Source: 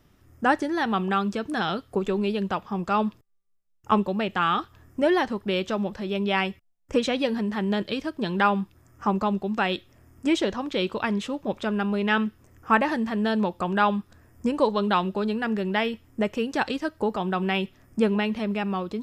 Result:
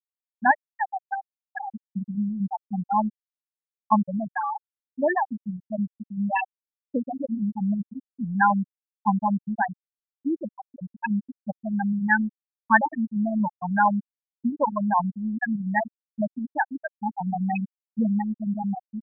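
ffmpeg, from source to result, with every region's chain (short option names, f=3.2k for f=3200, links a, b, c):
-filter_complex "[0:a]asettb=1/sr,asplit=3[a][b][c];[a]atrim=end=0.514[d];[b]atrim=start=0.51:end=1.73,asetpts=PTS-STARTPTS,afade=t=in:d=0.004:c=qsin,afade=t=out:st=1.216:d=0.004:c=qsin,highpass=f=510:p=1,volume=17dB,asoftclip=hard,volume=-17dB[e];[c]atrim=start=1.726[f];[d][e]acrossfade=d=0.004:c1=hsin:c2=qsin[g];[g][f]acrossfade=d=0.004:c1=qsin:c2=hsin,aecho=1:1:1.2:0.75,afftfilt=real='re*gte(hypot(re,im),0.447)':imag='im*gte(hypot(re,im),0.447)':win_size=1024:overlap=0.75,adynamicequalizer=threshold=0.0112:dfrequency=1900:dqfactor=0.7:tfrequency=1900:tqfactor=0.7:attack=5:release=100:ratio=0.375:range=4:mode=boostabove:tftype=highshelf"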